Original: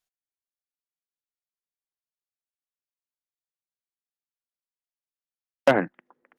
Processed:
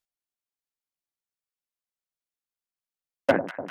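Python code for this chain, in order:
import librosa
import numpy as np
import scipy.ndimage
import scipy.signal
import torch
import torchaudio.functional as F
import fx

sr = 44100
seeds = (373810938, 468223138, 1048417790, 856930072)

y = fx.echo_alternate(x, sr, ms=169, hz=1000.0, feedback_pct=89, wet_db=-11)
y = fx.stretch_grains(y, sr, factor=0.58, grain_ms=32.0)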